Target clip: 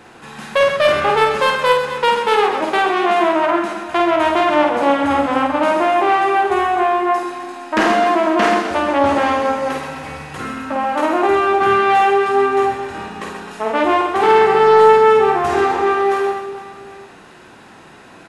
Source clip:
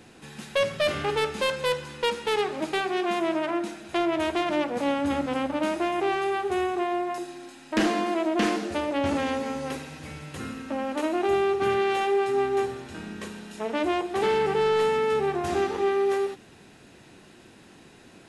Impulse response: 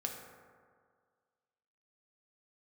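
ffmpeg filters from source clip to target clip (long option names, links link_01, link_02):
-af "equalizer=frequency=1100:width=0.71:gain=11.5,aecho=1:1:50|130|258|462.8|790.5:0.631|0.398|0.251|0.158|0.1,volume=2.5dB"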